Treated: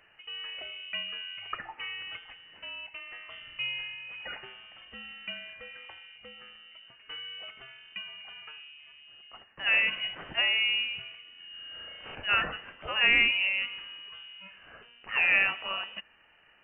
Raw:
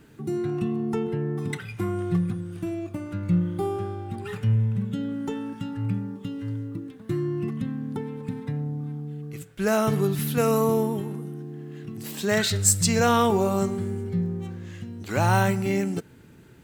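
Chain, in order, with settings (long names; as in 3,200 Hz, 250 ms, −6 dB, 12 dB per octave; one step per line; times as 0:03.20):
high-pass filter 510 Hz 24 dB per octave
0:11.36–0:12.15: flutter between parallel walls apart 6.2 metres, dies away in 1.2 s
voice inversion scrambler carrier 3,300 Hz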